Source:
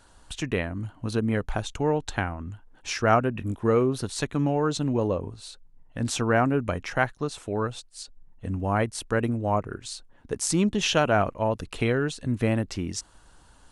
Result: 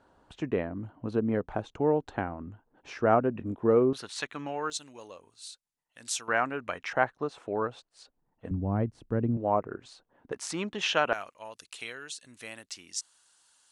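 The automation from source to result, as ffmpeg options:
-af "asetnsamples=n=441:p=0,asendcmd='3.93 bandpass f 2200;4.7 bandpass f 7700;6.28 bandpass f 2000;6.93 bandpass f 740;8.51 bandpass f 160;9.37 bandpass f 590;10.32 bandpass f 1500;11.13 bandpass f 7500',bandpass=f=430:t=q:w=0.63:csg=0"

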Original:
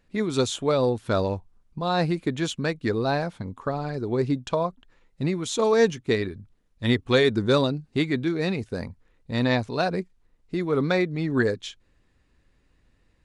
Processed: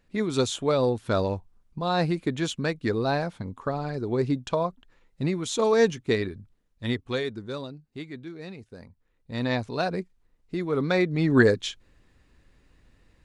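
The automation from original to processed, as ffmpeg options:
-af "volume=17.5dB,afade=t=out:st=6.26:d=1.17:silence=0.223872,afade=t=in:st=8.86:d=0.84:silence=0.266073,afade=t=in:st=10.86:d=0.46:silence=0.446684"

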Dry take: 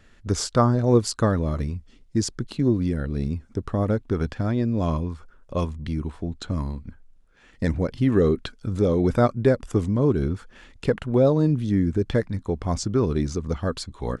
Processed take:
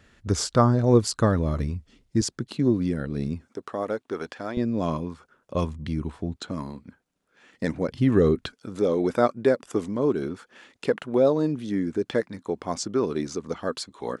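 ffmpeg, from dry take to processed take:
-af "asetnsamples=n=441:p=0,asendcmd='2.21 highpass f 130;3.48 highpass f 420;4.57 highpass f 170;5.55 highpass f 81;6.36 highpass f 200;7.88 highpass f 75;8.53 highpass f 270',highpass=47"

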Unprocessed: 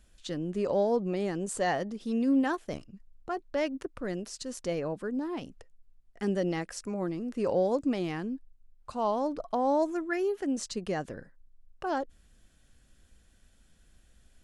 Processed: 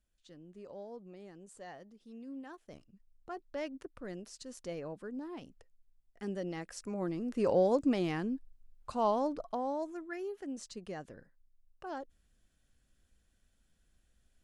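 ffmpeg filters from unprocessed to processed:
-af "volume=-0.5dB,afade=t=in:st=2.46:d=0.87:silence=0.281838,afade=t=in:st=6.52:d=0.92:silence=0.375837,afade=t=out:st=9.05:d=0.69:silence=0.316228"

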